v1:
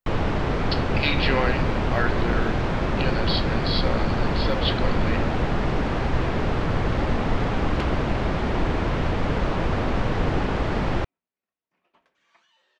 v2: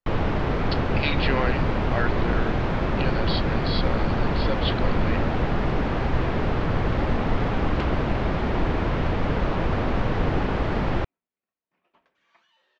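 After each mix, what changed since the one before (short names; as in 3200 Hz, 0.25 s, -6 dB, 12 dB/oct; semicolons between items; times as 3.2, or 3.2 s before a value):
speech: send -11.5 dB; master: add air absorption 91 m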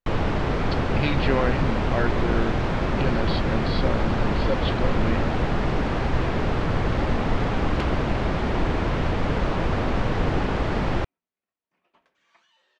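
speech: add tilt -3.5 dB/oct; master: remove air absorption 91 m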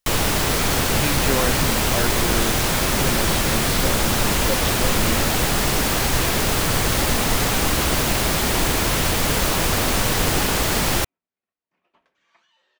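first sound: remove tape spacing loss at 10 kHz 41 dB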